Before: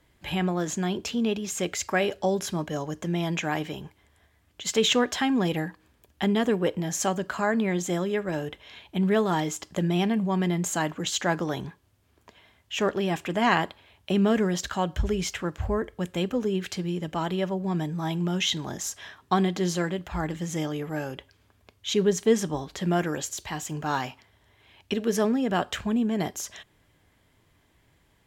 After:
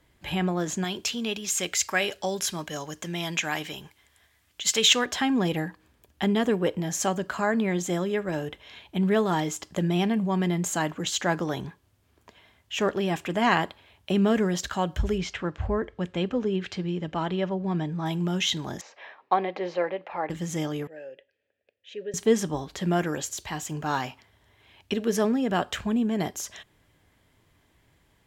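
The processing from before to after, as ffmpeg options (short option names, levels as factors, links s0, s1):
-filter_complex "[0:a]asettb=1/sr,asplit=3[s0][s1][s2];[s0]atrim=end=0.844[s3];[s1]atrim=start=0.84:end=5.06,asetpts=PTS-STARTPTS,afade=t=in:d=0.004:c=qsin,afade=t=out:st=4.216:d=0.004:c=qsin,tiltshelf=f=1200:g=-6.5[s4];[s2]atrim=start=5.056[s5];[s3][s4]acrossfade=d=0.004:c1=hsin:c2=qsin[s6];[s6][s5]acrossfade=d=0.004:c1=qsin:c2=hsin,asettb=1/sr,asplit=3[s7][s8][s9];[s7]atrim=end=15.184[s10];[s8]atrim=start=15.18:end=18.06,asetpts=PTS-STARTPTS,afade=t=in:d=0.004:c=qsin,afade=t=out:st=2.876:d=0.004:c=qsin,lowpass=4300[s11];[s9]atrim=start=18.056[s12];[s10][s11]acrossfade=d=0.004:c1=hsin:c2=qsin[s13];[s13][s12]acrossfade=d=0.004:c1=qsin:c2=hsin,asettb=1/sr,asplit=3[s14][s15][s16];[s14]atrim=end=18.814[s17];[s15]atrim=start=18.81:end=20.3,asetpts=PTS-STARTPTS,afade=t=in:d=0.004:c=qsin,afade=t=out:st=1.486:d=0.004:c=qsin,highpass=450,equalizer=f=530:t=q:w=4:g=10,equalizer=f=830:t=q:w=4:g=5,equalizer=f=1500:t=q:w=4:g=-5,equalizer=f=2300:t=q:w=4:g=4,equalizer=f=3300:t=q:w=4:g=-9,lowpass=f=3500:w=0.5412,lowpass=f=3500:w=1.3066[s18];[s16]atrim=start=20.296[s19];[s17][s18]acrossfade=d=0.004:c1=hsin:c2=qsin[s20];[s20][s19]acrossfade=d=0.004:c1=qsin:c2=hsin,asettb=1/sr,asplit=3[s21][s22][s23];[s21]atrim=end=20.874[s24];[s22]atrim=start=20.87:end=22.14,asetpts=PTS-STARTPTS,afade=t=in:d=0.004:c=qsin,afade=t=out:st=1.266:d=0.004:c=qsin,asplit=3[s25][s26][s27];[s25]bandpass=f=530:t=q:w=8,volume=1[s28];[s26]bandpass=f=1840:t=q:w=8,volume=0.501[s29];[s27]bandpass=f=2480:t=q:w=8,volume=0.355[s30];[s28][s29][s30]amix=inputs=3:normalize=0[s31];[s23]atrim=start=22.136[s32];[s24][s31]acrossfade=d=0.004:c1=hsin:c2=qsin[s33];[s33][s32]acrossfade=d=0.004:c1=qsin:c2=hsin"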